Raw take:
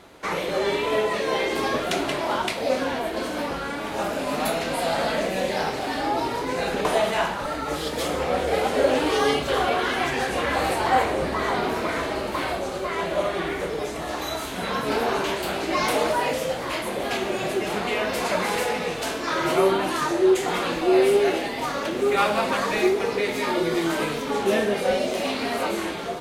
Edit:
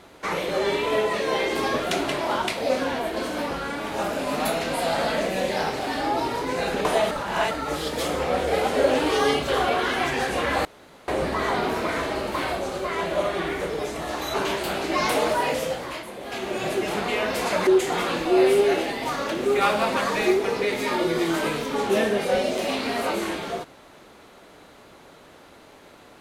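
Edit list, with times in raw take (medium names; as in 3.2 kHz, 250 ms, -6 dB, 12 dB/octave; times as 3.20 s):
7.11–7.51 s: reverse
10.65–11.08 s: room tone
14.34–15.13 s: delete
16.42–17.46 s: dip -9 dB, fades 0.44 s
18.46–20.23 s: delete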